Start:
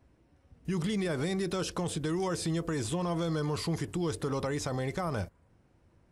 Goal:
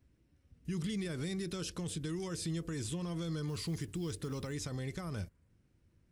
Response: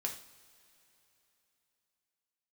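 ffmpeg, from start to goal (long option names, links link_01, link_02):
-filter_complex "[0:a]asettb=1/sr,asplit=3[link_01][link_02][link_03];[link_01]atrim=end=3.484[link_04];[link_02]atrim=start=3.48:end=4.53,asetpts=PTS-STARTPTS,afade=type=in:duration=0.004:curve=qsin,afade=type=out:start_time=1.046:duration=0.004:curve=qsin,acrusher=bits=8:mode=log:mix=0:aa=0.000001[link_05];[link_03]atrim=start=4.526[link_06];[link_04][link_05]acrossfade=duration=0.004:curve1=hsin:curve2=qsin[link_07];[link_07][link_06]acrossfade=duration=0.004:curve1=qsin:curve2=hsin,equalizer=frequency=790:width=0.81:gain=-13,volume=-3.5dB"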